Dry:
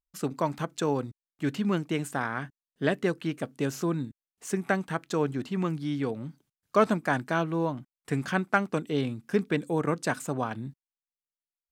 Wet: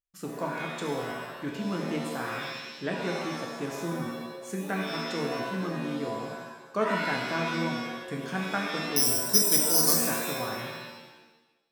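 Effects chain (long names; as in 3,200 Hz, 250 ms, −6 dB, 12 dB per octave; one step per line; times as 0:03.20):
0:08.96–0:09.94: bad sample-rate conversion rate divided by 8×, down filtered, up zero stuff
reverb with rising layers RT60 1 s, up +7 semitones, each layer −2 dB, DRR 0 dB
level −7.5 dB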